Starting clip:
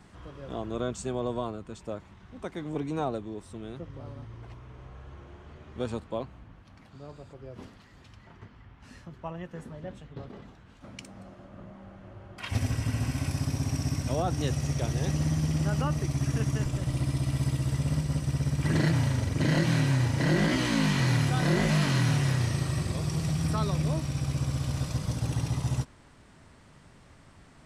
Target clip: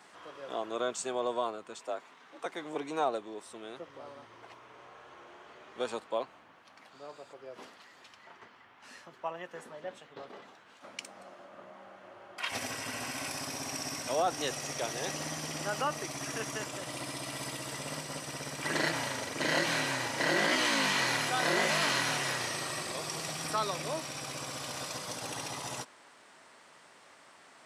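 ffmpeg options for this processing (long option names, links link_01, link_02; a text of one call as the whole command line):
ffmpeg -i in.wav -filter_complex "[0:a]highpass=540,asettb=1/sr,asplit=3[link_01][link_02][link_03];[link_01]atrim=end=1.794[link_04];[link_02]atrim=start=1.79:end=2.46,asetpts=PTS-STARTPTS,afade=type=in:duration=0.004:curve=qsin,afade=type=out:start_time=0.666:duration=0.004:curve=qsin,afreqshift=58[link_05];[link_03]atrim=start=2.456[link_06];[link_04][link_05]acrossfade=duration=0.004:curve1=hsin:curve2=qsin[link_07];[link_07][link_06]acrossfade=duration=0.004:curve1=qsin:curve2=hsin,volume=3.5dB" out.wav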